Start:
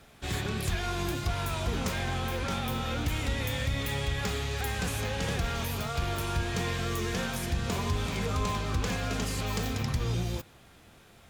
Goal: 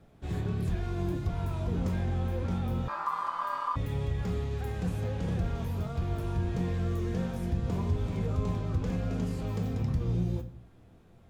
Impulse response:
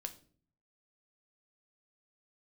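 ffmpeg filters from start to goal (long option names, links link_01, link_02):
-filter_complex "[0:a]tiltshelf=frequency=970:gain=9[link_01];[1:a]atrim=start_sample=2205[link_02];[link_01][link_02]afir=irnorm=-1:irlink=0,asettb=1/sr,asplit=3[link_03][link_04][link_05];[link_03]atrim=end=2.884[link_06];[link_04]atrim=start=2.88:end=3.76,asetpts=PTS-STARTPTS,afade=type=in:duration=0.004:curve=qsin,afade=type=out:start_time=0.876:duration=0.004:curve=qsin,aeval=exprs='val(0)*sin(2*PI*1100*n/s)':channel_layout=same[link_07];[link_05]atrim=start=3.756[link_08];[link_06][link_07]acrossfade=duration=0.004:curve1=hsin:curve2=qsin[link_09];[link_09][link_08]acrossfade=duration=0.004:curve1=qsin:curve2=hsin,volume=-5dB"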